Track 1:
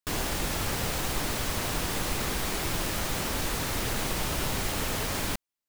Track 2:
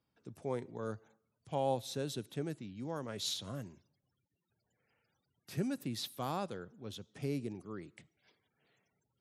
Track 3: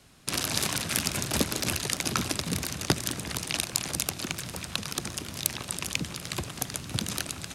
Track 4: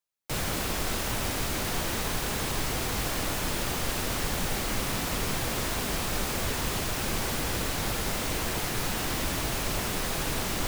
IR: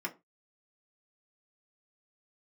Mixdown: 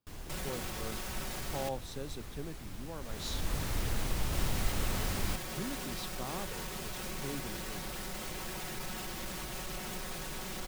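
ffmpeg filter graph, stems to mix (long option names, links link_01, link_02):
-filter_complex "[0:a]lowshelf=frequency=130:gain=11.5,volume=-8.5dB,afade=type=in:start_time=2.99:duration=0.62:silence=0.251189[link_01];[1:a]volume=-4.5dB[link_02];[3:a]alimiter=limit=-21.5dB:level=0:latency=1:release=218,asoftclip=type=tanh:threshold=-30dB,aecho=1:1:5.4:0.65,volume=-6.5dB,asplit=3[link_03][link_04][link_05];[link_03]atrim=end=1.69,asetpts=PTS-STARTPTS,afade=type=out:start_time=1.686:duration=0.004:curve=hsin[link_06];[link_04]atrim=start=1.69:end=4.33,asetpts=PTS-STARTPTS,volume=0[link_07];[link_05]atrim=start=4.33,asetpts=PTS-STARTPTS,afade=type=in:duration=0.004:curve=hsin[link_08];[link_06][link_07][link_08]concat=n=3:v=0:a=1[link_09];[link_01][link_02][link_09]amix=inputs=3:normalize=0"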